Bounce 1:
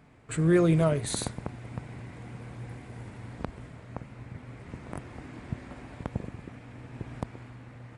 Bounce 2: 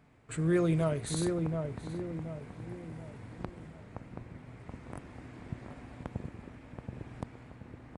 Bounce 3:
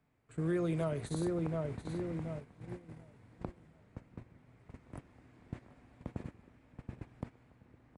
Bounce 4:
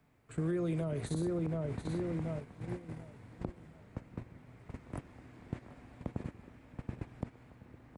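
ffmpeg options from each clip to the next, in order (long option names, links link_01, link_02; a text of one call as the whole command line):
ffmpeg -i in.wav -filter_complex "[0:a]asplit=2[link_01][link_02];[link_02]adelay=728,lowpass=frequency=1000:poles=1,volume=-4dB,asplit=2[link_03][link_04];[link_04]adelay=728,lowpass=frequency=1000:poles=1,volume=0.46,asplit=2[link_05][link_06];[link_06]adelay=728,lowpass=frequency=1000:poles=1,volume=0.46,asplit=2[link_07][link_08];[link_08]adelay=728,lowpass=frequency=1000:poles=1,volume=0.46,asplit=2[link_09][link_10];[link_10]adelay=728,lowpass=frequency=1000:poles=1,volume=0.46,asplit=2[link_11][link_12];[link_12]adelay=728,lowpass=frequency=1000:poles=1,volume=0.46[link_13];[link_01][link_03][link_05][link_07][link_09][link_11][link_13]amix=inputs=7:normalize=0,volume=-5.5dB" out.wav
ffmpeg -i in.wav -filter_complex "[0:a]acrossover=split=270|1200[link_01][link_02][link_03];[link_01]acompressor=threshold=-37dB:ratio=4[link_04];[link_02]acompressor=threshold=-34dB:ratio=4[link_05];[link_03]acompressor=threshold=-49dB:ratio=4[link_06];[link_04][link_05][link_06]amix=inputs=3:normalize=0,agate=range=-13dB:threshold=-41dB:ratio=16:detection=peak" out.wav
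ffmpeg -i in.wav -filter_complex "[0:a]acrossover=split=490[link_01][link_02];[link_02]alimiter=level_in=15.5dB:limit=-24dB:level=0:latency=1:release=70,volume=-15.5dB[link_03];[link_01][link_03]amix=inputs=2:normalize=0,acompressor=threshold=-42dB:ratio=2,volume=6.5dB" out.wav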